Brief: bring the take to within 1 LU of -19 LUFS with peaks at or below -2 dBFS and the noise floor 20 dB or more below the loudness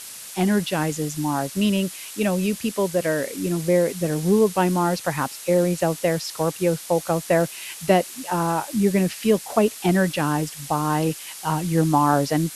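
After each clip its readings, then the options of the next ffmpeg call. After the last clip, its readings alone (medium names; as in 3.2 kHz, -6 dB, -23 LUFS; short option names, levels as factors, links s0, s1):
noise floor -38 dBFS; noise floor target -43 dBFS; loudness -22.5 LUFS; peak level -3.5 dBFS; loudness target -19.0 LUFS
-> -af "afftdn=nr=6:nf=-38"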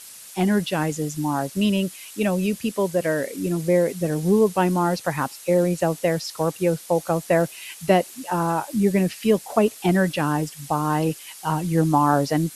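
noise floor -42 dBFS; noise floor target -43 dBFS
-> -af "afftdn=nr=6:nf=-42"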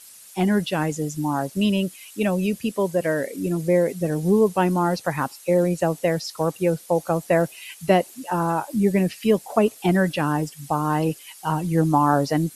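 noise floor -46 dBFS; loudness -22.5 LUFS; peak level -4.0 dBFS; loudness target -19.0 LUFS
-> -af "volume=1.5,alimiter=limit=0.794:level=0:latency=1"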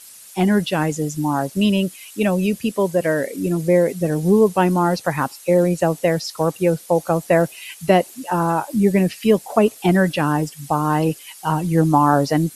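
loudness -19.0 LUFS; peak level -2.0 dBFS; noise floor -42 dBFS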